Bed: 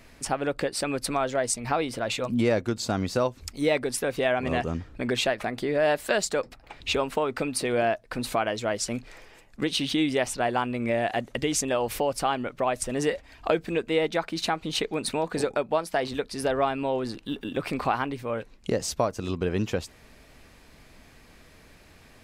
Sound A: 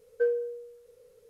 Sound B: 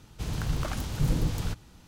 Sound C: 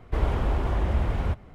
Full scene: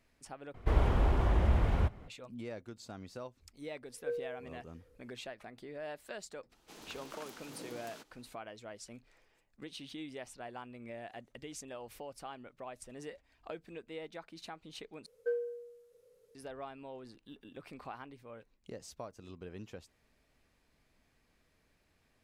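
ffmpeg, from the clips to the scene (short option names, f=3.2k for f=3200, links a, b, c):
-filter_complex "[1:a]asplit=2[a][b];[0:a]volume=-20dB[c];[2:a]highpass=f=260:w=0.5412,highpass=f=260:w=1.3066[d];[b]equalizer=f=63:t=o:w=0.38:g=-12.5[e];[c]asplit=3[f][g][h];[f]atrim=end=0.544[i];[3:a]atrim=end=1.54,asetpts=PTS-STARTPTS,volume=-3dB[j];[g]atrim=start=2.076:end=15.064[k];[e]atrim=end=1.29,asetpts=PTS-STARTPTS,volume=-8dB[l];[h]atrim=start=16.346[m];[a]atrim=end=1.29,asetpts=PTS-STARTPTS,volume=-11dB,afade=t=in:d=0.004:c=hsin,afade=t=out:st=1.286:d=0.004:c=hsin,adelay=3860[n];[d]atrim=end=1.87,asetpts=PTS-STARTPTS,volume=-11.5dB,afade=t=in:d=0.05,afade=t=out:st=1.82:d=0.05,adelay=6490[o];[i][j]acrossfade=d=0.004:c1=hsin:c2=hsin[p];[p][k]acrossfade=d=0.004:c1=hsin:c2=hsin[q];[q][l]acrossfade=d=0.004:c1=hsin:c2=hsin[r];[r][m]acrossfade=d=0.004:c1=hsin:c2=hsin[s];[s][n][o]amix=inputs=3:normalize=0"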